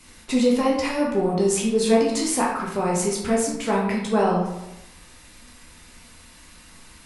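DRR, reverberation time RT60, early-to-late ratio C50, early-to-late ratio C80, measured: -3.5 dB, 0.95 s, 3.0 dB, 6.0 dB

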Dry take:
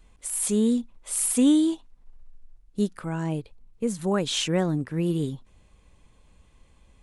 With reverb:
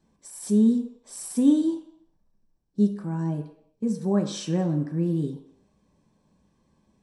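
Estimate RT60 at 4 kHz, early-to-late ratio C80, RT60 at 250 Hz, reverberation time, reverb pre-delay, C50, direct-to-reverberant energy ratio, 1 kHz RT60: 0.65 s, 11.5 dB, 0.55 s, 0.70 s, 3 ms, 9.0 dB, 1.5 dB, 0.70 s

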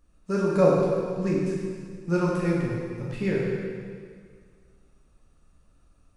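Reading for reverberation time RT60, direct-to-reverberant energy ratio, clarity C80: 1.9 s, -5.5 dB, 0.5 dB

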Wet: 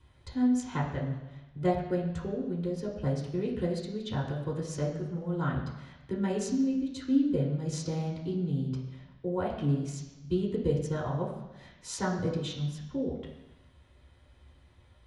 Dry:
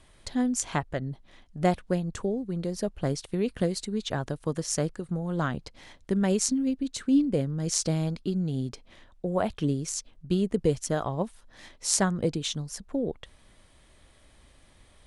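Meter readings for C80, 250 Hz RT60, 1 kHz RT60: 7.5 dB, 1.0 s, 1.2 s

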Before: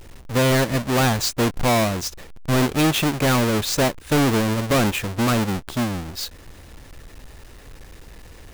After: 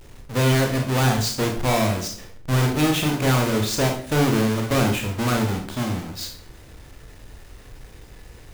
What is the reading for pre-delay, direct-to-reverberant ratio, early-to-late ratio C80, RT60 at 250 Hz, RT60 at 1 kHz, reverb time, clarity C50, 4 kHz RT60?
22 ms, 2.0 dB, 11.5 dB, 0.60 s, 0.50 s, 0.50 s, 7.0 dB, 0.40 s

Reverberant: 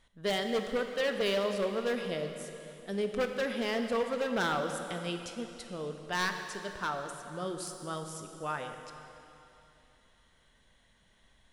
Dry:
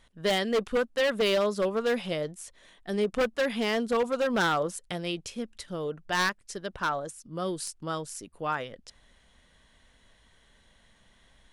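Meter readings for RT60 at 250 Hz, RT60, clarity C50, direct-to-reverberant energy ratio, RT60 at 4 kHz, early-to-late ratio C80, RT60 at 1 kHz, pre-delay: 3.1 s, 3.0 s, 6.0 dB, 5.0 dB, 2.8 s, 7.0 dB, 3.0 s, 8 ms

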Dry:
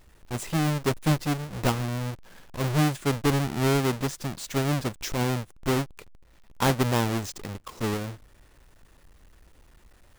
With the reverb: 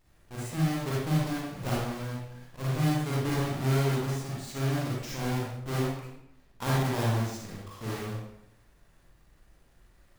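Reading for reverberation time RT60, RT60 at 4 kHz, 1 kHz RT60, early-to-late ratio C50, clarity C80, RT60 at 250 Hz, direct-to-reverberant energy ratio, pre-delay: 0.80 s, 0.65 s, 0.80 s, -2.5 dB, 1.5 dB, 0.95 s, -7.0 dB, 34 ms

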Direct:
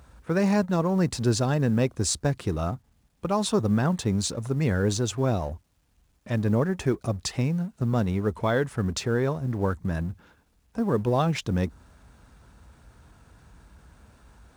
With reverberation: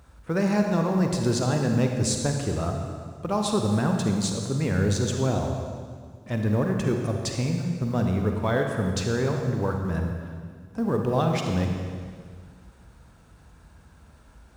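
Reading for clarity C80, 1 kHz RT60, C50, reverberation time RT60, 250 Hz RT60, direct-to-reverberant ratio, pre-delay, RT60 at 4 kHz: 4.5 dB, 1.9 s, 3.5 dB, 2.0 s, 2.2 s, 2.5 dB, 38 ms, 1.7 s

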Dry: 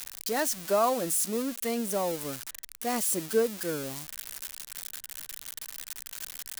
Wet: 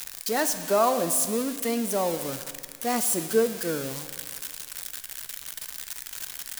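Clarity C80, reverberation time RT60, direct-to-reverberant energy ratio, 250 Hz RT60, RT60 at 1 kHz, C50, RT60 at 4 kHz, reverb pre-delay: 11.5 dB, 1.9 s, 8.5 dB, 1.9 s, 1.9 s, 10.0 dB, 1.8 s, 7 ms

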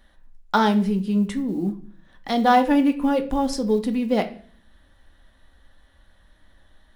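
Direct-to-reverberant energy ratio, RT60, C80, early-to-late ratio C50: 5.5 dB, 0.45 s, 18.5 dB, 14.0 dB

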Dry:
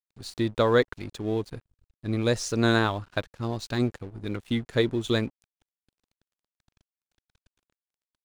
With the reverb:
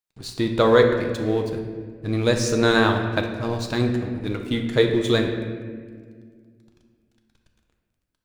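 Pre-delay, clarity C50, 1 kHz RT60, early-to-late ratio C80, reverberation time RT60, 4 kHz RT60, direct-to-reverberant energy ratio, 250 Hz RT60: 6 ms, 5.5 dB, 1.5 s, 7.0 dB, 1.8 s, 1.1 s, 3.0 dB, 2.7 s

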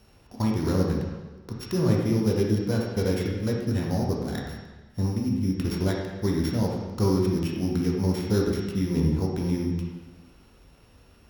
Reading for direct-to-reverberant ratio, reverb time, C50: -2.0 dB, 1.3 s, 1.0 dB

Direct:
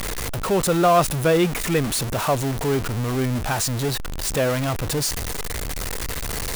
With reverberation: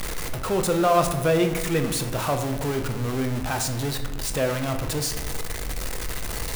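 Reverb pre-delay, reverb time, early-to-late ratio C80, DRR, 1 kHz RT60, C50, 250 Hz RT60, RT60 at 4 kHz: 3 ms, 1.2 s, 10.5 dB, 5.0 dB, 1.0 s, 8.5 dB, 1.4 s, 0.65 s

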